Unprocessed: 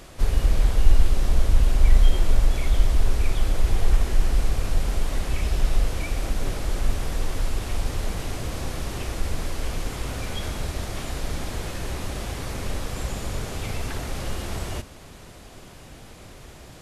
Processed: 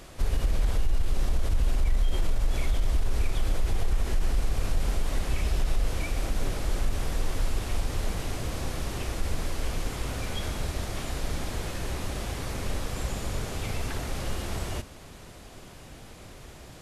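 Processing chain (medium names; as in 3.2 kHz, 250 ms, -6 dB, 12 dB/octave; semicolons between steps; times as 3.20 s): peak limiter -14.5 dBFS, peak gain reduction 11.5 dB; trim -2 dB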